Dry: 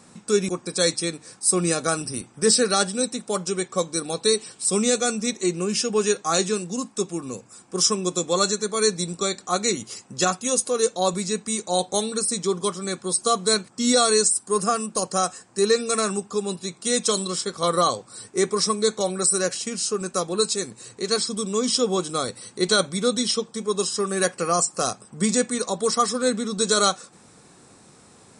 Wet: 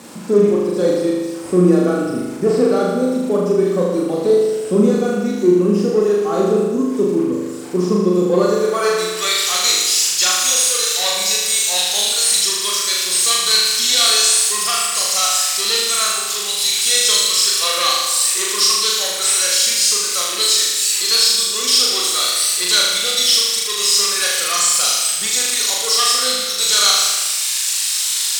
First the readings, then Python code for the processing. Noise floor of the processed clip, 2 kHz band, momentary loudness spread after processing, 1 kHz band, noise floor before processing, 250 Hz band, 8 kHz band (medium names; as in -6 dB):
-23 dBFS, +8.0 dB, 6 LU, +2.0 dB, -53 dBFS, +6.5 dB, +9.5 dB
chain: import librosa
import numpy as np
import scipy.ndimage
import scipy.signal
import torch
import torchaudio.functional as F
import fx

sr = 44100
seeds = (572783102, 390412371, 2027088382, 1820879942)

p1 = x + 0.5 * 10.0 ** (-13.5 / 20.0) * np.diff(np.sign(x), prepend=np.sign(x[:1]))
p2 = fx.dereverb_blind(p1, sr, rt60_s=1.8)
p3 = fx.fold_sine(p2, sr, drive_db=13, ceiling_db=-3.5)
p4 = p2 + (p3 * librosa.db_to_amplitude(-10.0))
p5 = fx.filter_sweep_bandpass(p4, sr, from_hz=280.0, to_hz=3600.0, start_s=8.29, end_s=9.43, q=1.1)
p6 = fx.room_flutter(p5, sr, wall_m=6.7, rt60_s=1.4)
y = p6 * librosa.db_to_amplitude(1.0)